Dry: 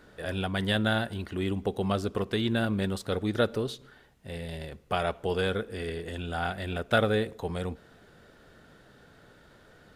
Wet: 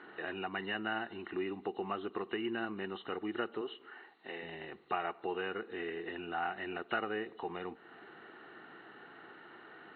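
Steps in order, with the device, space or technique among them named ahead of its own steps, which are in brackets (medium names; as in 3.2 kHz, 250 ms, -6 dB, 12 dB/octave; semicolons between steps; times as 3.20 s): 3.61–4.43 s: high-pass 280 Hz 12 dB/octave; hearing aid with frequency lowering (knee-point frequency compression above 2.7 kHz 4:1; compression 2:1, threshold -44 dBFS, peak gain reduction 14 dB; cabinet simulation 280–6900 Hz, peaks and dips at 350 Hz +9 dB, 560 Hz -10 dB, 800 Hz +8 dB, 1.2 kHz +7 dB, 1.9 kHz +7 dB, 3.4 kHz -10 dB); trim +1 dB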